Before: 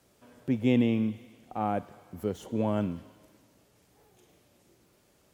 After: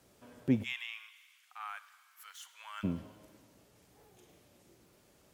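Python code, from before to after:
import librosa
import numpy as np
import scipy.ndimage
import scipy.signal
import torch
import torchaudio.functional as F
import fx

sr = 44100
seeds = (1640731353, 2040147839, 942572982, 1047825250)

y = fx.steep_highpass(x, sr, hz=1200.0, slope=36, at=(0.62, 2.83), fade=0.02)
y = y + 10.0 ** (-23.0 / 20.0) * np.pad(y, (int(96 * sr / 1000.0), 0))[:len(y)]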